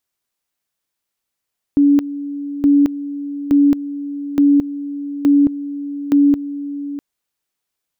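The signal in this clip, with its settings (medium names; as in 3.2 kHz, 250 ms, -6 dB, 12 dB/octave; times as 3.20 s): two-level tone 285 Hz -8 dBFS, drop 14.5 dB, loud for 0.22 s, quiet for 0.65 s, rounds 6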